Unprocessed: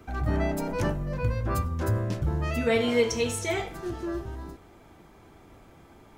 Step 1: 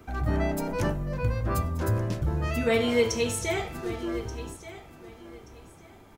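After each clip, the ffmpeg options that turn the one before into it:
ffmpeg -i in.wav -af "highshelf=frequency=10000:gain=4,aecho=1:1:1180|2360:0.178|0.0409" out.wav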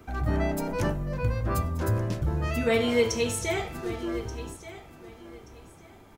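ffmpeg -i in.wav -af anull out.wav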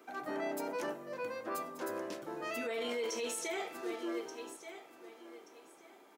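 ffmpeg -i in.wav -af "highpass=frequency=300:width=0.5412,highpass=frequency=300:width=1.3066,alimiter=level_in=0.5dB:limit=-24dB:level=0:latency=1:release=12,volume=-0.5dB,volume=-5dB" out.wav

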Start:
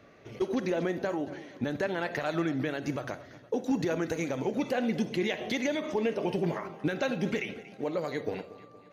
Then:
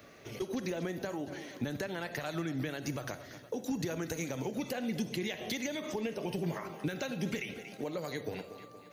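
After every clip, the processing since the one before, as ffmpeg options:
ffmpeg -i in.wav -filter_complex "[0:a]aemphasis=mode=production:type=75kf,acrossover=split=170[link_01][link_02];[link_02]acompressor=threshold=-37dB:ratio=3[link_03];[link_01][link_03]amix=inputs=2:normalize=0" out.wav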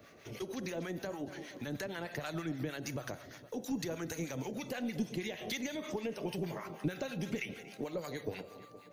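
ffmpeg -i in.wav -filter_complex "[0:a]acrossover=split=860[link_01][link_02];[link_01]aeval=exprs='val(0)*(1-0.7/2+0.7/2*cos(2*PI*6.4*n/s))':channel_layout=same[link_03];[link_02]aeval=exprs='val(0)*(1-0.7/2-0.7/2*cos(2*PI*6.4*n/s))':channel_layout=same[link_04];[link_03][link_04]amix=inputs=2:normalize=0,aeval=exprs='0.0631*(cos(1*acos(clip(val(0)/0.0631,-1,1)))-cos(1*PI/2))+0.00501*(cos(2*acos(clip(val(0)/0.0631,-1,1)))-cos(2*PI/2))':channel_layout=same,volume=1dB" out.wav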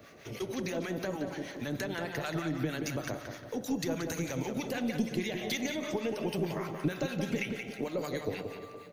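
ffmpeg -i in.wav -filter_complex "[0:a]asplit=2[link_01][link_02];[link_02]adelay=178,lowpass=frequency=3800:poles=1,volume=-6dB,asplit=2[link_03][link_04];[link_04]adelay=178,lowpass=frequency=3800:poles=1,volume=0.37,asplit=2[link_05][link_06];[link_06]adelay=178,lowpass=frequency=3800:poles=1,volume=0.37,asplit=2[link_07][link_08];[link_08]adelay=178,lowpass=frequency=3800:poles=1,volume=0.37[link_09];[link_01][link_03][link_05][link_07][link_09]amix=inputs=5:normalize=0,volume=4dB" out.wav

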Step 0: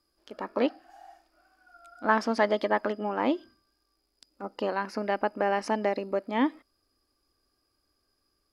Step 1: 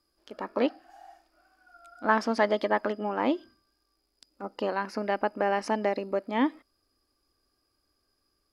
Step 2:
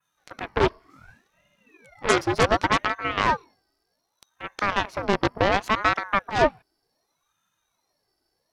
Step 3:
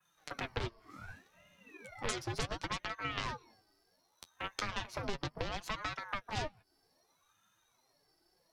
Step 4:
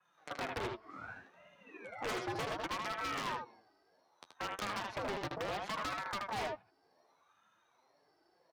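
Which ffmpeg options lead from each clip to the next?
ffmpeg -i in.wav -af anull out.wav
ffmpeg -i in.wav -af "adynamicequalizer=threshold=0.00316:dfrequency=4700:dqfactor=0.96:tfrequency=4700:tqfactor=0.96:attack=5:release=100:ratio=0.375:range=2:mode=cutabove:tftype=bell,aeval=exprs='0.355*(cos(1*acos(clip(val(0)/0.355,-1,1)))-cos(1*PI/2))+0.0562*(cos(3*acos(clip(val(0)/0.355,-1,1)))-cos(3*PI/2))+0.0282*(cos(5*acos(clip(val(0)/0.355,-1,1)))-cos(5*PI/2))+0.112*(cos(8*acos(clip(val(0)/0.355,-1,1)))-cos(8*PI/2))':channel_layout=same,aeval=exprs='val(0)*sin(2*PI*840*n/s+840*0.6/0.67*sin(2*PI*0.67*n/s))':channel_layout=same,volume=3.5dB" out.wav
ffmpeg -i in.wav -filter_complex "[0:a]acompressor=threshold=-27dB:ratio=6,flanger=delay=5.4:depth=6.5:regen=32:speed=0.36:shape=triangular,acrossover=split=140|3000[link_01][link_02][link_03];[link_02]acompressor=threshold=-46dB:ratio=3[link_04];[link_01][link_04][link_03]amix=inputs=3:normalize=0,volume=5dB" out.wav
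ffmpeg -i in.wav -af "bandpass=frequency=740:width_type=q:width=0.55:csg=0,aecho=1:1:78:0.531,aeval=exprs='0.015*(abs(mod(val(0)/0.015+3,4)-2)-1)':channel_layout=same,volume=5dB" out.wav

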